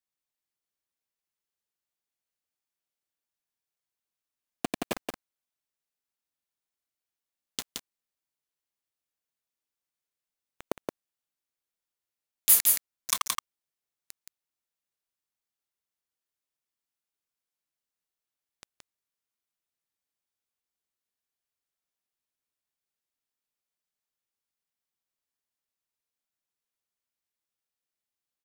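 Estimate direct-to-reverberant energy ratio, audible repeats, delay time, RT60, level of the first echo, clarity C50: no reverb audible, 1, 172 ms, no reverb audible, −3.5 dB, no reverb audible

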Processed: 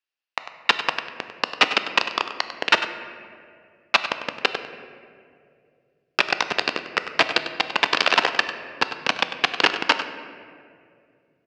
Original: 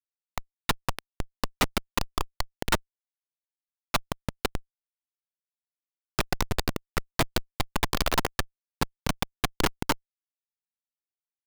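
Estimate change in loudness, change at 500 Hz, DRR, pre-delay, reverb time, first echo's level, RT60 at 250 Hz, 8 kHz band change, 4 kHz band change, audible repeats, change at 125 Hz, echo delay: +8.5 dB, +5.5 dB, 7.5 dB, 3 ms, 2.4 s, −12.0 dB, 3.1 s, −2.5 dB, +10.5 dB, 1, −13.0 dB, 98 ms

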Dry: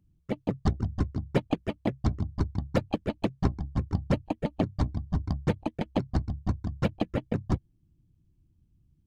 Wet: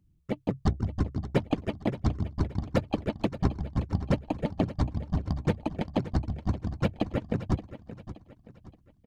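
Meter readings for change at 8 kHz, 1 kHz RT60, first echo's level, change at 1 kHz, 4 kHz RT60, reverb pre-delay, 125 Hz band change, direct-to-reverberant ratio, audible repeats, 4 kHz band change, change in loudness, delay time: can't be measured, no reverb audible, −14.0 dB, 0.0 dB, no reverb audible, no reverb audible, 0.0 dB, no reverb audible, 3, 0.0 dB, 0.0 dB, 574 ms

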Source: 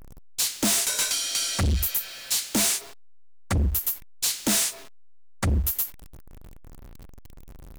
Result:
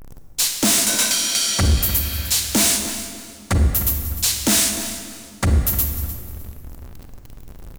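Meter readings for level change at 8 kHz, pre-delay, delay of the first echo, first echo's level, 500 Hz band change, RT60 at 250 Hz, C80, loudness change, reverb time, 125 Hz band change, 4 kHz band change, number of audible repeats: +6.5 dB, 35 ms, 303 ms, −14.0 dB, +7.0 dB, 2.7 s, 6.5 dB, +6.0 dB, 2.3 s, +7.5 dB, +6.5 dB, 2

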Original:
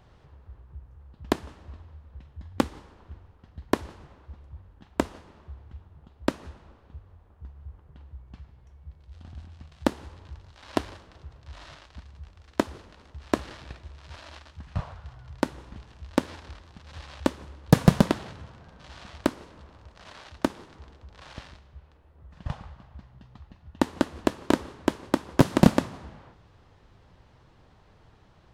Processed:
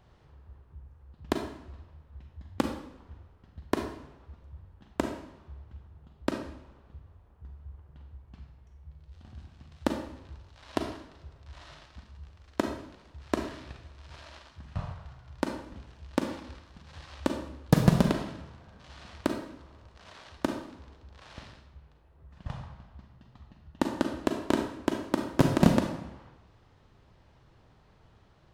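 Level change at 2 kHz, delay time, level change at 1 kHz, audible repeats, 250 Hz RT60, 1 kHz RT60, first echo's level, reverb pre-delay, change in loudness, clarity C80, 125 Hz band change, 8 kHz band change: −3.0 dB, no echo audible, −3.0 dB, no echo audible, 0.75 s, 0.60 s, no echo audible, 35 ms, −3.5 dB, 9.5 dB, −2.5 dB, −3.5 dB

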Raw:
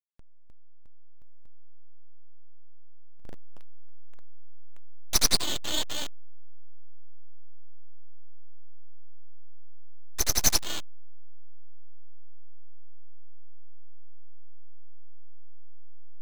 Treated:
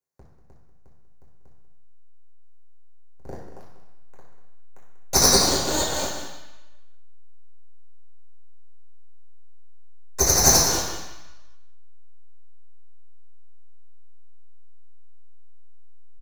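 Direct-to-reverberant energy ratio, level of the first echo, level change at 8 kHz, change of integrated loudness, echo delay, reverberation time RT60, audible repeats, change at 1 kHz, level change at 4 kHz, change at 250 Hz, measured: −5.5 dB, −11.0 dB, +9.5 dB, +8.0 dB, 192 ms, 1.0 s, 1, +13.0 dB, +6.0 dB, +11.5 dB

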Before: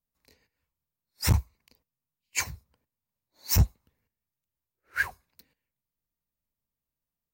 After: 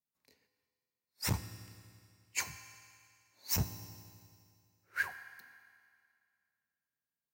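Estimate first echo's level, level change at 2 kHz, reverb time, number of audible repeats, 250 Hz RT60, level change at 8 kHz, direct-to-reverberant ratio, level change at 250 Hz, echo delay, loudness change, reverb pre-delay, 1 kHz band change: no echo audible, −6.0 dB, 2.2 s, no echo audible, 2.2 s, −6.0 dB, 10.0 dB, −7.0 dB, no echo audible, −9.0 dB, 4 ms, −6.0 dB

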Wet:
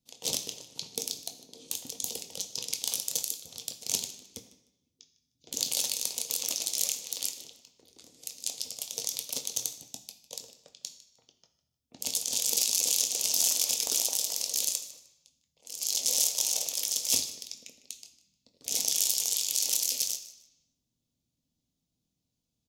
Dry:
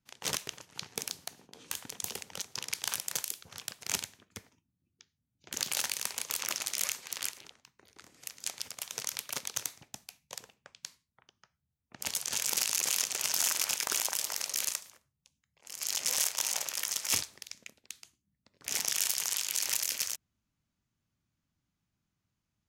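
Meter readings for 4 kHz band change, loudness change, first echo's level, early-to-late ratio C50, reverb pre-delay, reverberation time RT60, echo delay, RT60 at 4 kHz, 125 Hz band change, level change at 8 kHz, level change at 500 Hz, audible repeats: +3.5 dB, +3.5 dB, −17.5 dB, 11.0 dB, 3 ms, 0.95 s, 153 ms, 0.90 s, can't be measured, +4.0 dB, +2.5 dB, 2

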